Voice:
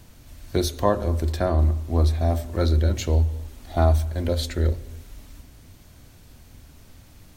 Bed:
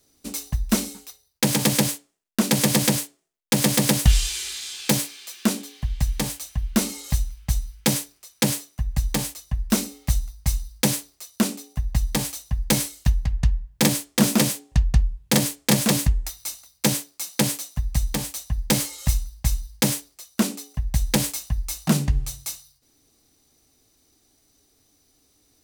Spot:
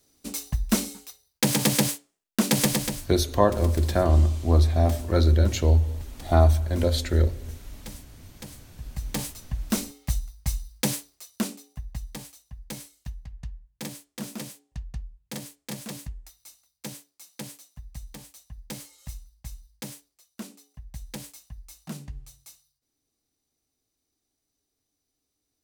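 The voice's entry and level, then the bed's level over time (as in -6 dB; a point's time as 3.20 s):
2.55 s, +1.0 dB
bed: 2.64 s -2 dB
3.26 s -21.5 dB
8.56 s -21.5 dB
9.19 s -5 dB
11.26 s -5 dB
12.38 s -17.5 dB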